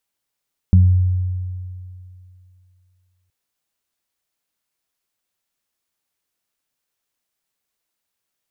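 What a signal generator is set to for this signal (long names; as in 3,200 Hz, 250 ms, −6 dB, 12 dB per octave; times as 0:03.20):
harmonic partials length 2.57 s, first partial 91.4 Hz, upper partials −6 dB, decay 2.57 s, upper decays 0.43 s, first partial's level −6.5 dB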